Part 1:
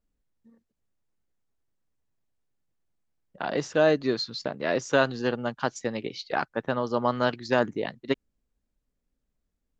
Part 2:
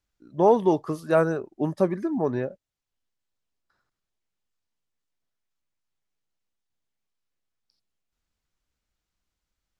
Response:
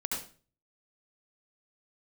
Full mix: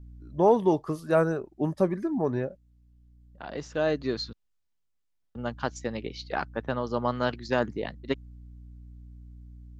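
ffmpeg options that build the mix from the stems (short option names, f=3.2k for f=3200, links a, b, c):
-filter_complex "[0:a]aeval=exprs='val(0)+0.00447*(sin(2*PI*60*n/s)+sin(2*PI*2*60*n/s)/2+sin(2*PI*3*60*n/s)/3+sin(2*PI*4*60*n/s)/4+sin(2*PI*5*60*n/s)/5)':c=same,volume=-3dB,asplit=3[a][b][c];[a]atrim=end=4.33,asetpts=PTS-STARTPTS,afade=t=out:st=4.326:d=0.004:c=hsin[d];[b]atrim=start=4.33:end=5.35,asetpts=PTS-STARTPTS,volume=0[e];[c]atrim=start=5.35,asetpts=PTS-STARTPTS,afade=t=in:d=0.004:c=hsin[f];[d][e][f]concat=n=3:v=0:a=1[g];[1:a]volume=-2.5dB,asplit=2[h][i];[i]apad=whole_len=432108[j];[g][j]sidechaincompress=threshold=-38dB:ratio=8:attack=5.8:release=1450[k];[k][h]amix=inputs=2:normalize=0,lowshelf=f=87:g=9.5"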